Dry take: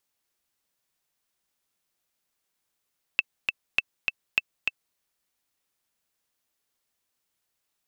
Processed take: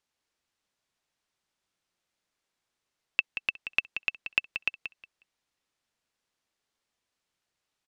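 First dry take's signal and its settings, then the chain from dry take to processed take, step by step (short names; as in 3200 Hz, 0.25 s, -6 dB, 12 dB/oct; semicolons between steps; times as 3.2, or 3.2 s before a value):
metronome 202 bpm, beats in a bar 2, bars 3, 2650 Hz, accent 3.5 dB -7.5 dBFS
Bessel low-pass 5700 Hz, order 2; on a send: feedback echo 0.181 s, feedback 19%, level -9.5 dB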